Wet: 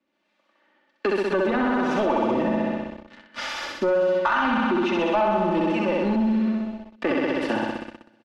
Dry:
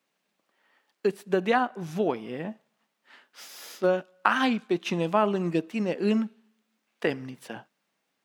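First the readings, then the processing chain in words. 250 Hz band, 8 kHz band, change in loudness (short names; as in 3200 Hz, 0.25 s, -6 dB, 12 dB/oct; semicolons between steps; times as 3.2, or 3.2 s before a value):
+6.0 dB, n/a, +4.0 dB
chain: harmonic tremolo 1.3 Hz, depth 70%, crossover 450 Hz; flutter echo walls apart 10.9 m, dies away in 1.4 s; vocal rider within 5 dB 0.5 s; sample leveller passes 3; comb 3.4 ms, depth 65%; limiter -14.5 dBFS, peak gain reduction 8 dB; dynamic EQ 940 Hz, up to +6 dB, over -36 dBFS, Q 1.3; LPF 3700 Hz 12 dB/oct; three-band squash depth 40%; gain -2.5 dB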